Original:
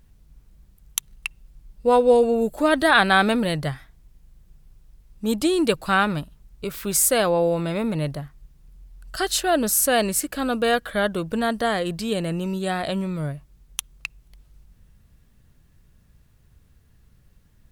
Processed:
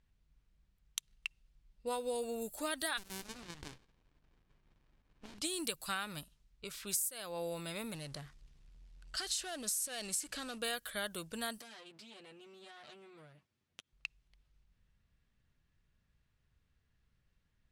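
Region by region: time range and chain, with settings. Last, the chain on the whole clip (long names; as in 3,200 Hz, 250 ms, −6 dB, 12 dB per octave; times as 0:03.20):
0:02.97–0:05.38: compressing power law on the bin magnitudes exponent 0.57 + downward compressor, threshold −25 dBFS + windowed peak hold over 65 samples
0:07.94–0:10.58: low-pass filter 11,000 Hz + downward compressor, threshold −26 dBFS + power curve on the samples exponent 0.7
0:11.58–0:13.93: lower of the sound and its delayed copy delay 8.2 ms + high-pass filter 160 Hz + downward compressor 5 to 1, threshold −37 dBFS
whole clip: low-pass that shuts in the quiet parts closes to 2,400 Hz, open at −20.5 dBFS; first-order pre-emphasis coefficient 0.9; downward compressor 16 to 1, threshold −33 dBFS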